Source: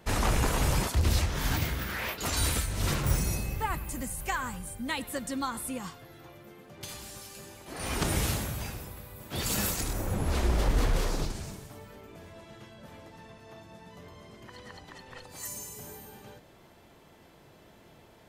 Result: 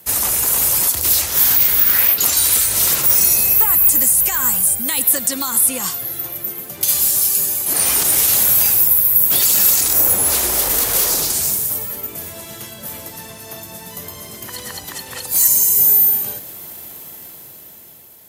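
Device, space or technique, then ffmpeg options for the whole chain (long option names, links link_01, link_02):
FM broadcast chain: -filter_complex "[0:a]highpass=63,dynaudnorm=framelen=400:gausssize=7:maxgain=11.5dB,acrossover=split=340|6300[link_01][link_02][link_03];[link_01]acompressor=threshold=-35dB:ratio=4[link_04];[link_02]acompressor=threshold=-24dB:ratio=4[link_05];[link_03]acompressor=threshold=-39dB:ratio=4[link_06];[link_04][link_05][link_06]amix=inputs=3:normalize=0,aemphasis=mode=production:type=50fm,alimiter=limit=-14.5dB:level=0:latency=1:release=72,asoftclip=type=hard:threshold=-18dB,lowpass=frequency=15000:width=0.5412,lowpass=frequency=15000:width=1.3066,aemphasis=mode=production:type=50fm,volume=1dB"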